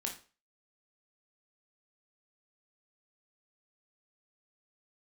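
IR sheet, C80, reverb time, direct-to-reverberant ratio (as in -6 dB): 14.5 dB, 0.35 s, 1.0 dB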